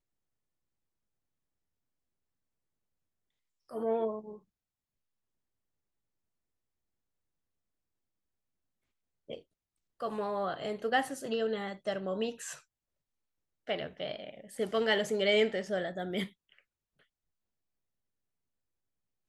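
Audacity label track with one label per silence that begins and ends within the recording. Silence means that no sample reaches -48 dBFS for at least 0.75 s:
4.380000	9.290000	silence
12.590000	13.670000	silence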